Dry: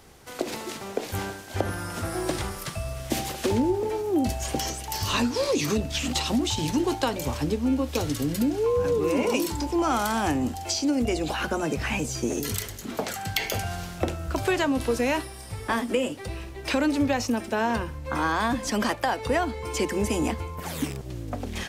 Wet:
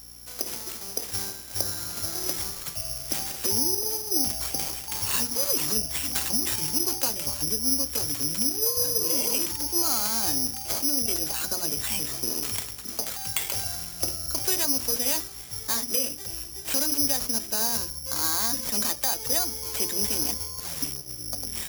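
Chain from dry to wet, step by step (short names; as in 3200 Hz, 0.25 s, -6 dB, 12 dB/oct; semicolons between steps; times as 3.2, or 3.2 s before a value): notches 60/120/180/240/300/360/420/480 Hz; hum 60 Hz, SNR 18 dB; careless resampling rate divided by 8×, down none, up zero stuff; in parallel at -12 dB: companded quantiser 4-bit; on the sum: gain -11.5 dB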